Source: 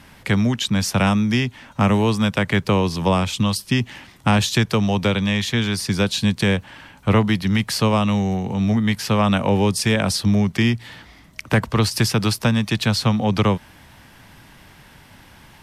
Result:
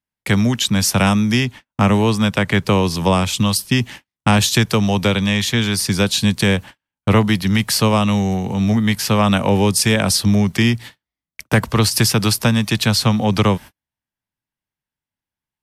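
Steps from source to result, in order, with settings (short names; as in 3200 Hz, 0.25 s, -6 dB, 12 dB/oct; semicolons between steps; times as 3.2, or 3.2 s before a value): gate -34 dBFS, range -47 dB; high shelf 6800 Hz +10 dB, from 1.45 s +3.5 dB, from 2.68 s +9 dB; gain +2.5 dB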